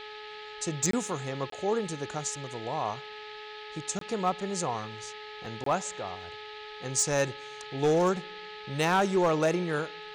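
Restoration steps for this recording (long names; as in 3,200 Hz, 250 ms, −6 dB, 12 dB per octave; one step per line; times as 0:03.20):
clipped peaks rebuilt −18.5 dBFS
hum removal 424.5 Hz, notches 4
repair the gap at 0:00.91/0:01.50/0:03.99/0:05.64, 23 ms
noise reduction from a noise print 30 dB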